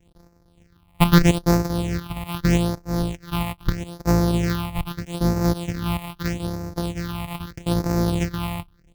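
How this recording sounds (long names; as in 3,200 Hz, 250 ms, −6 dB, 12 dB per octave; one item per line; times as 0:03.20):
a buzz of ramps at a fixed pitch in blocks of 256 samples
phaser sweep stages 6, 0.79 Hz, lowest notch 410–3,100 Hz
sample-and-hold tremolo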